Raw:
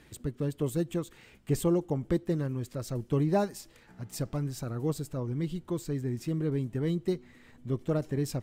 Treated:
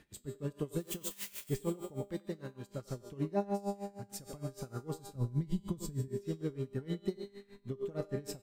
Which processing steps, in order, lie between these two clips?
0.80–1.50 s: zero-crossing glitches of -28 dBFS; 5.15–6.08 s: tone controls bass +15 dB, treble +7 dB; feedback comb 200 Hz, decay 1.5 s, mix 90%; speakerphone echo 90 ms, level -8 dB; compression 6:1, threshold -41 dBFS, peak gain reduction 8.5 dB; 2.08–2.69 s: bass shelf 420 Hz -7.5 dB; logarithmic tremolo 6.5 Hz, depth 21 dB; trim +15 dB

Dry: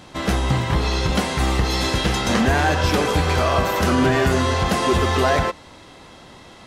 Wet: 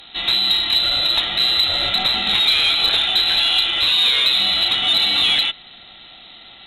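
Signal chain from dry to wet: frequency inversion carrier 4 kHz; Chebyshev shaper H 2 -26 dB, 5 -27 dB, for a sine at -5.5 dBFS

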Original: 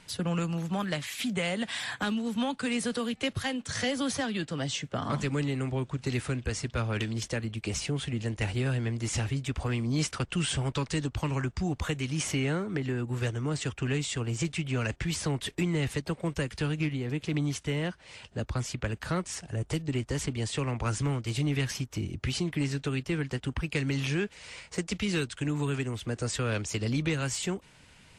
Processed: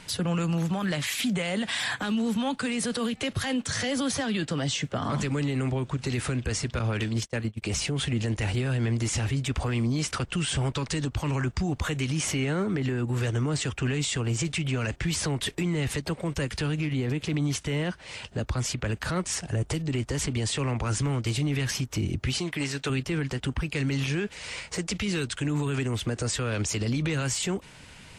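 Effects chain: 6.79–7.62 s: gate -32 dBFS, range -28 dB; 22.38–22.90 s: bass shelf 350 Hz -12 dB; peak limiter -28 dBFS, peak gain reduction 10 dB; trim +8 dB

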